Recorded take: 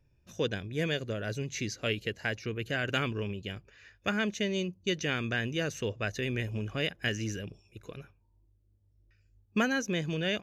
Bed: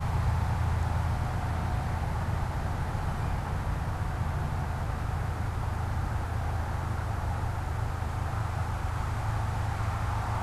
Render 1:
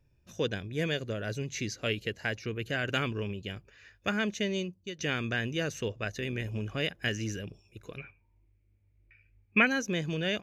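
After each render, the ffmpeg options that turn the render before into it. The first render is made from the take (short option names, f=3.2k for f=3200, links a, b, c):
-filter_complex "[0:a]asettb=1/sr,asplit=3[a][b][c];[a]atrim=end=5.884[d];[b]atrim=start=5.88:end=6.46,asetpts=PTS-STARTPTS,afade=t=in:d=0.004:c=qsin,afade=t=out:st=0.576:d=0.004:c=qsin,tremolo=f=78:d=0.4[e];[c]atrim=start=6.456[f];[d][e]acrossfade=d=0.004:c1=hsin:c2=qsin[g];[g][f]acrossfade=d=0.004:c1=qsin:c2=hsin,asettb=1/sr,asplit=3[h][i][j];[h]atrim=end=7.984[k];[i]atrim=start=7.98:end=9.67,asetpts=PTS-STARTPTS,afade=t=in:d=0.004:c=qsin,afade=t=out:st=1.686:d=0.004:c=qsin,lowpass=f=2.3k:t=q:w=9.7[l];[j]atrim=start=9.666[m];[k][l]acrossfade=d=0.004:c1=hsin:c2=qsin[n];[n][m]acrossfade=d=0.004:c1=qsin:c2=hsin,asplit=2[o][p];[o]atrim=end=4.99,asetpts=PTS-STARTPTS,afade=t=out:st=4.53:d=0.46:silence=0.177828[q];[p]atrim=start=4.99,asetpts=PTS-STARTPTS,afade=t=in:d=0.004:c=hsin:silence=0.177828[r];[q][r]concat=n=2:v=0:a=1"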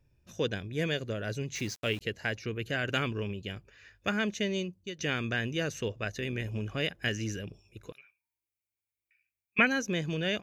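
-filter_complex "[0:a]asettb=1/sr,asplit=3[a][b][c];[a]atrim=end=1.554[d];[b]atrim=start=1.55:end=2.01,asetpts=PTS-STARTPTS,afade=t=in:d=0.004:c=qsin,afade=t=out:st=0.456:d=0.004:c=qsin,aeval=exprs='val(0)*gte(abs(val(0)),0.00631)':c=same[e];[c]atrim=start=2.006[f];[d][e]acrossfade=d=0.004:c1=hsin:c2=qsin[g];[g][f]acrossfade=d=0.004:c1=qsin:c2=hsin,asettb=1/sr,asplit=3[h][i][j];[h]atrim=end=7.924[k];[i]atrim=start=7.92:end=9.59,asetpts=PTS-STARTPTS,afade=t=in:d=0.004:c=qsin,afade=t=out:st=1.666:d=0.004:c=qsin,aderivative[l];[j]atrim=start=9.586[m];[k][l]acrossfade=d=0.004:c1=hsin:c2=qsin[n];[n][m]acrossfade=d=0.004:c1=qsin:c2=hsin"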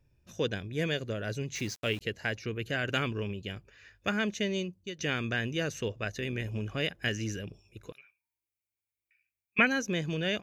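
-af anull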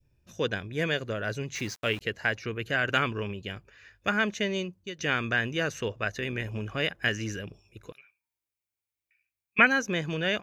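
-af "adynamicequalizer=threshold=0.00501:dfrequency=1200:dqfactor=0.71:tfrequency=1200:tqfactor=0.71:attack=5:release=100:ratio=0.375:range=4:mode=boostabove:tftype=bell"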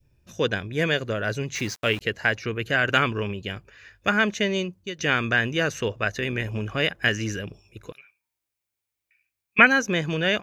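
-af "volume=5dB"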